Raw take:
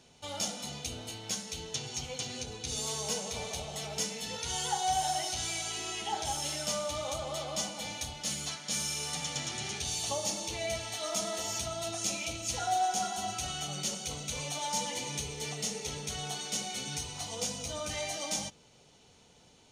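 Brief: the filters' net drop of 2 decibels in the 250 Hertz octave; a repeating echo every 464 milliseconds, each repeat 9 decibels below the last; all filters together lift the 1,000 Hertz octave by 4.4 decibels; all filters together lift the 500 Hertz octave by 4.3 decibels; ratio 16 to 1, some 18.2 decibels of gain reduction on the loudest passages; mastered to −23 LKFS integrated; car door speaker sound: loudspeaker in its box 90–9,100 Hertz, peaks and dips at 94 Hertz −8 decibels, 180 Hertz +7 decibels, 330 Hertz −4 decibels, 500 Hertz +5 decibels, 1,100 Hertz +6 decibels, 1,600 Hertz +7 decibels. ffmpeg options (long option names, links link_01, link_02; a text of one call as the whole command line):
ffmpeg -i in.wav -af "equalizer=frequency=250:width_type=o:gain=-6.5,equalizer=frequency=500:width_type=o:gain=3,equalizer=frequency=1000:width_type=o:gain=3,acompressor=threshold=-42dB:ratio=16,highpass=90,equalizer=frequency=94:width_type=q:width=4:gain=-8,equalizer=frequency=180:width_type=q:width=4:gain=7,equalizer=frequency=330:width_type=q:width=4:gain=-4,equalizer=frequency=500:width_type=q:width=4:gain=5,equalizer=frequency=1100:width_type=q:width=4:gain=6,equalizer=frequency=1600:width_type=q:width=4:gain=7,lowpass=frequency=9100:width=0.5412,lowpass=frequency=9100:width=1.3066,aecho=1:1:464|928|1392|1856:0.355|0.124|0.0435|0.0152,volume=20dB" out.wav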